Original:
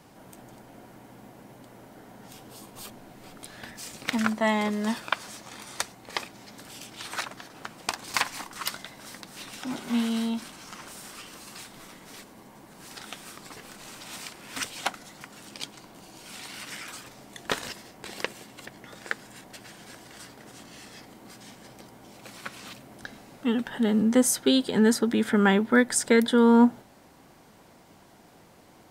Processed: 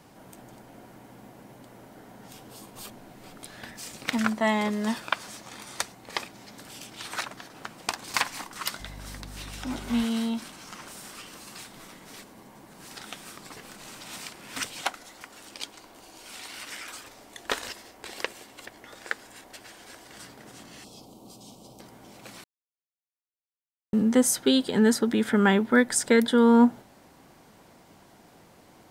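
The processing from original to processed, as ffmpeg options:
ffmpeg -i in.wav -filter_complex "[0:a]asettb=1/sr,asplit=3[link_01][link_02][link_03];[link_01]atrim=end=8.804[link_04];[link_02]atrim=start=8.8:end=10.04,asetpts=PTS-STARTPTS,afade=type=in:duration=0.004:curve=qsin,afade=type=out:start_time=1.236:duration=0.004:curve=qsin,aeval=exprs='val(0)+0.00891*(sin(2*PI*50*n/s)+sin(2*PI*2*50*n/s)/2+sin(2*PI*3*50*n/s)/3+sin(2*PI*4*50*n/s)/4+sin(2*PI*5*50*n/s)/5)':channel_layout=same[link_05];[link_03]atrim=start=10.036[link_06];[link_04][link_05]acrossfade=duration=0.004:curve1=hsin:curve2=qsin[link_07];[link_07][link_06]acrossfade=duration=0.004:curve1=qsin:curve2=hsin,asettb=1/sr,asplit=3[link_08][link_09][link_10];[link_08]atrim=end=14.824[link_11];[link_09]atrim=start=14.82:end=20.1,asetpts=PTS-STARTPTS,afade=type=in:duration=0.004:curve=qsin,afade=type=out:start_time=5.276:duration=0.004:curve=qsin,equalizer=frequency=160:width_type=o:width=0.77:gain=-15[link_12];[link_10]atrim=start=20.096[link_13];[link_11][link_12]acrossfade=duration=0.004:curve1=hsin:curve2=qsin[link_14];[link_14][link_13]acrossfade=duration=0.004:curve1=qsin:curve2=hsin,asettb=1/sr,asplit=3[link_15][link_16][link_17];[link_15]atrim=end=20.844[link_18];[link_16]atrim=start=20.84:end=21.8,asetpts=PTS-STARTPTS,afade=type=in:duration=0.004:curve=qsin,afade=type=out:start_time=0.956:duration=0.004:curve=qsin,asuperstop=centerf=1800:order=4:qfactor=0.82[link_19];[link_17]atrim=start=21.796[link_20];[link_18][link_19]acrossfade=duration=0.004:curve1=hsin:curve2=qsin[link_21];[link_21][link_20]acrossfade=duration=0.004:curve1=qsin:curve2=hsin,asplit=3[link_22][link_23][link_24];[link_22]atrim=end=22.44,asetpts=PTS-STARTPTS,afade=type=out:start_time=22.436:duration=0.004:curve=hsin[link_25];[link_23]atrim=start=22.44:end=23.93,asetpts=PTS-STARTPTS,volume=0[link_26];[link_24]atrim=start=23.93,asetpts=PTS-STARTPTS,afade=type=in:duration=0.004:curve=hsin[link_27];[link_25][link_26][link_27]concat=n=3:v=0:a=1" out.wav

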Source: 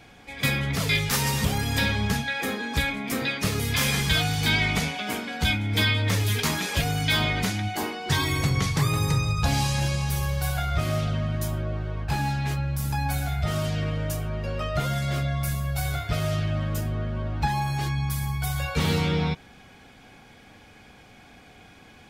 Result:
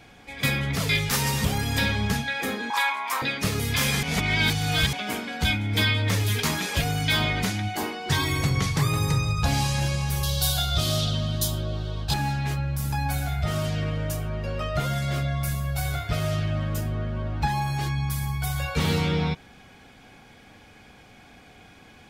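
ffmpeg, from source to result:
ffmpeg -i in.wav -filter_complex "[0:a]asettb=1/sr,asplit=3[link_01][link_02][link_03];[link_01]atrim=end=2.704[link_04];[link_02]atrim=start=2.7:end=3.22,asetpts=PTS-STARTPTS,afade=type=in:duration=0.004:curve=qsin,afade=type=out:start_time=0.516:duration=0.004:curve=qsin,highpass=frequency=980:width_type=q:width=12[link_05];[link_03]atrim=start=3.216[link_06];[link_04][link_05]acrossfade=duration=0.004:curve1=hsin:curve2=qsin[link_07];[link_07][link_06]acrossfade=duration=0.004:curve1=qsin:curve2=hsin,asettb=1/sr,asplit=3[link_08][link_09][link_10];[link_08]atrim=end=10.234[link_11];[link_09]atrim=start=10.23:end=12.14,asetpts=PTS-STARTPTS,afade=type=in:duration=0.004:curve=qsin,afade=type=out:start_time=1.906:duration=0.004:curve=qsin,highshelf=frequency=2800:width_type=q:width=3:gain=8.5[link_12];[link_10]atrim=start=12.136[link_13];[link_11][link_12]acrossfade=duration=0.004:curve1=hsin:curve2=qsin[link_14];[link_14][link_13]acrossfade=duration=0.004:curve1=qsin:curve2=hsin,asplit=3[link_15][link_16][link_17];[link_15]atrim=end=4.032[link_18];[link_16]atrim=start=4.028:end=4.932,asetpts=PTS-STARTPTS,areverse[link_19];[link_17]atrim=start=4.928[link_20];[link_18][link_19]acrossfade=duration=0.004:curve1=hsin:curve2=hsin[link_21];[link_21][link_20]acrossfade=duration=0.004:curve1=hsin:curve2=hsin" out.wav

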